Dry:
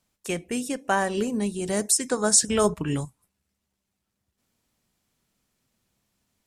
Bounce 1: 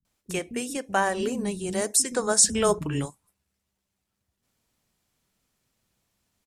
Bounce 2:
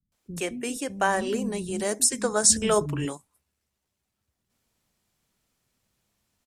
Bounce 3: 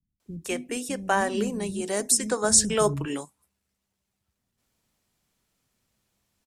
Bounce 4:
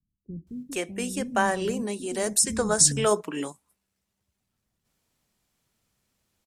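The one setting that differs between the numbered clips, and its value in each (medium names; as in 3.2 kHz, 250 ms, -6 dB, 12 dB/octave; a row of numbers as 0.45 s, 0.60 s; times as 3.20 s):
bands offset in time, time: 50 ms, 120 ms, 200 ms, 470 ms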